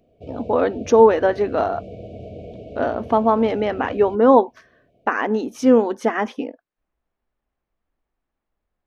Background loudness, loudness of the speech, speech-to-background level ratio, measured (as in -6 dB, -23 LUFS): -37.5 LUFS, -18.5 LUFS, 19.0 dB